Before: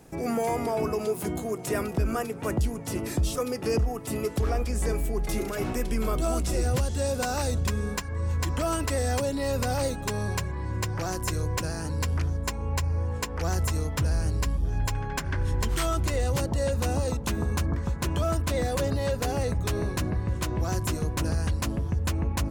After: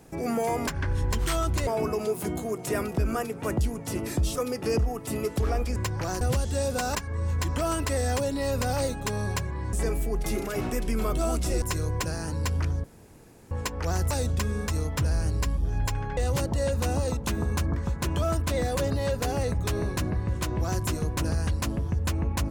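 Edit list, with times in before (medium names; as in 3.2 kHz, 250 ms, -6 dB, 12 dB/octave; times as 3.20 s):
4.76–6.65 s: swap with 10.74–11.19 s
7.39–7.96 s: move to 13.68 s
12.41–13.08 s: room tone
15.17–16.17 s: move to 0.67 s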